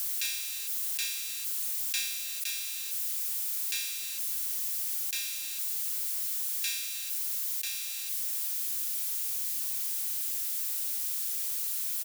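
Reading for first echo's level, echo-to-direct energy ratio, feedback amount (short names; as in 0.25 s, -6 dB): -18.5 dB, -18.0 dB, 29%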